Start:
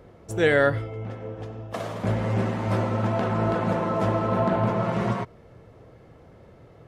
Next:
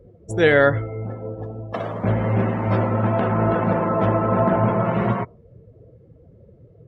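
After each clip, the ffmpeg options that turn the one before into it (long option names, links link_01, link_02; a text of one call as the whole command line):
ffmpeg -i in.wav -af "afftdn=noise_reduction=23:noise_floor=-42,volume=4.5dB" out.wav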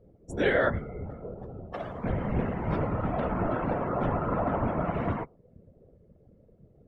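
ffmpeg -i in.wav -af "afftfilt=real='hypot(re,im)*cos(2*PI*random(0))':imag='hypot(re,im)*sin(2*PI*random(1))':win_size=512:overlap=0.75,volume=-3dB" out.wav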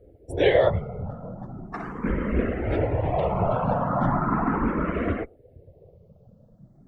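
ffmpeg -i in.wav -filter_complex "[0:a]asplit=2[link_01][link_02];[link_02]afreqshift=0.38[link_03];[link_01][link_03]amix=inputs=2:normalize=1,volume=7.5dB" out.wav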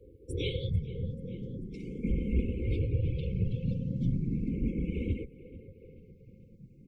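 ffmpeg -i in.wav -filter_complex "[0:a]asplit=5[link_01][link_02][link_03][link_04][link_05];[link_02]adelay=439,afreqshift=-39,volume=-23.5dB[link_06];[link_03]adelay=878,afreqshift=-78,volume=-28.4dB[link_07];[link_04]adelay=1317,afreqshift=-117,volume=-33.3dB[link_08];[link_05]adelay=1756,afreqshift=-156,volume=-38.1dB[link_09];[link_01][link_06][link_07][link_08][link_09]amix=inputs=5:normalize=0,acrossover=split=200|3000[link_10][link_11][link_12];[link_11]acompressor=threshold=-36dB:ratio=6[link_13];[link_10][link_13][link_12]amix=inputs=3:normalize=0,afftfilt=real='re*(1-between(b*sr/4096,540,2100))':imag='im*(1-between(b*sr/4096,540,2100))':win_size=4096:overlap=0.75,volume=-1.5dB" out.wav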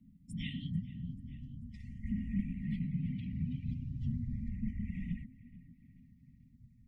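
ffmpeg -i in.wav -af "afreqshift=-260,volume=-6.5dB" out.wav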